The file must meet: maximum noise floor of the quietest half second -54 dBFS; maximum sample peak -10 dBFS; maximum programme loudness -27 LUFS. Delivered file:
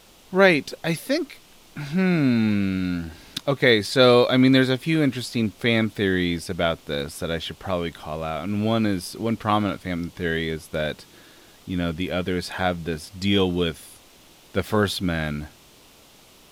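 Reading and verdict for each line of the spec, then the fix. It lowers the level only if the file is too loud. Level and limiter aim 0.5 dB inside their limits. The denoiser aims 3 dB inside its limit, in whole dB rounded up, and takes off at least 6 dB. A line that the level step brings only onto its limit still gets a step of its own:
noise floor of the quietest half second -52 dBFS: fail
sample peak -3.0 dBFS: fail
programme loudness -23.0 LUFS: fail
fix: gain -4.5 dB; limiter -10.5 dBFS

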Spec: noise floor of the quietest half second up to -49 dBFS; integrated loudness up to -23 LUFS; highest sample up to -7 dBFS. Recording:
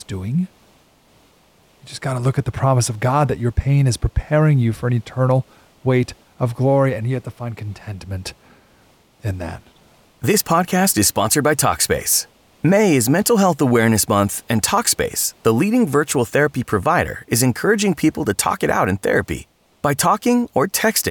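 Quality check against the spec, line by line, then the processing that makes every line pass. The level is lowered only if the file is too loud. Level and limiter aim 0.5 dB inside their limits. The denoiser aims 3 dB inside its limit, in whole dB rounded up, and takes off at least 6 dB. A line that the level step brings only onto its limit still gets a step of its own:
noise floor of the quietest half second -54 dBFS: OK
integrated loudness -18.0 LUFS: fail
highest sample -5.0 dBFS: fail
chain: gain -5.5 dB

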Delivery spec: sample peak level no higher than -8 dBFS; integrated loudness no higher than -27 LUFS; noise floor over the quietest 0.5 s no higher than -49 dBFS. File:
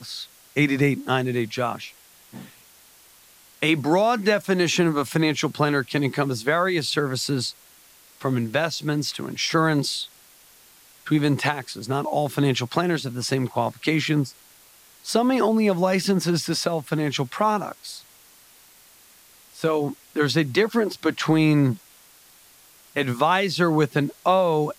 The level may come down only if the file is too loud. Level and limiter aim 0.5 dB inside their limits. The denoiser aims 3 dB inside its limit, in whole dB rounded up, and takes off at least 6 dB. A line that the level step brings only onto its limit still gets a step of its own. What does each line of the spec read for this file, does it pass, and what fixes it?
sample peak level -6.5 dBFS: fail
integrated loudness -23.0 LUFS: fail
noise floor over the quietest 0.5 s -52 dBFS: OK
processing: gain -4.5 dB

